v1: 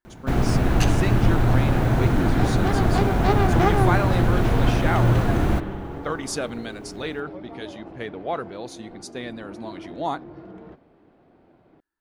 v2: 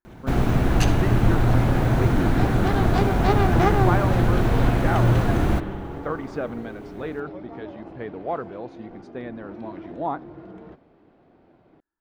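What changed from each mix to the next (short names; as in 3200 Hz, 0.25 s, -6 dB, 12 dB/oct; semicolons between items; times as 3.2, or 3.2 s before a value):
speech: add LPF 1500 Hz 12 dB/oct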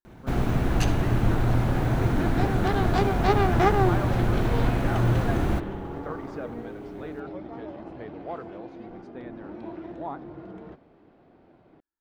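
speech -8.0 dB; first sound -4.0 dB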